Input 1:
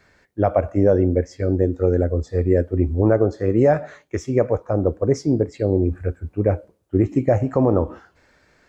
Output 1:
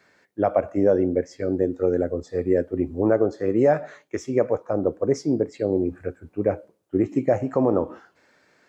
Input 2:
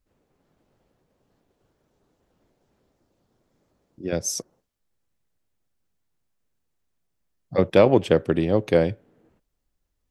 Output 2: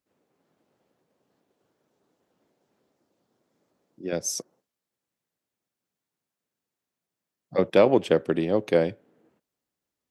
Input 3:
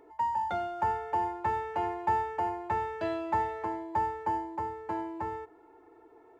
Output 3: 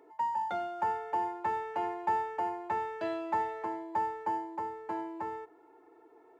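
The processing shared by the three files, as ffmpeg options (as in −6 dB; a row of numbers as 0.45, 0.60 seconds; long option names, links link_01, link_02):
-af "highpass=180,volume=-2dB"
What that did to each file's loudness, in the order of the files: −3.0, −2.5, −2.0 LU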